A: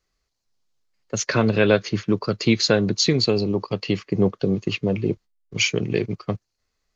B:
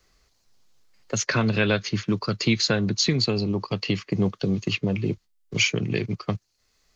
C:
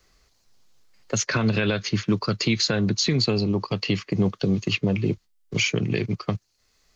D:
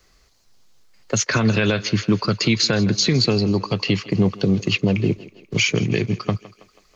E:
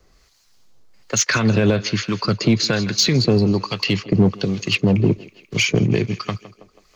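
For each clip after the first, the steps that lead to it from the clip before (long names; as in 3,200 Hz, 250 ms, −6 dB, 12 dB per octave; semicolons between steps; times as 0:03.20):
dynamic equaliser 470 Hz, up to −7 dB, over −32 dBFS, Q 0.86; multiband upward and downward compressor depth 40%
brickwall limiter −14 dBFS, peak gain reduction 6 dB; level +2 dB
feedback echo with a high-pass in the loop 162 ms, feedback 55%, high-pass 280 Hz, level −17.5 dB; level +4 dB
two-band tremolo in antiphase 1.2 Hz, depth 70%, crossover 980 Hz; in parallel at −3 dB: hard clipping −17 dBFS, distortion −13 dB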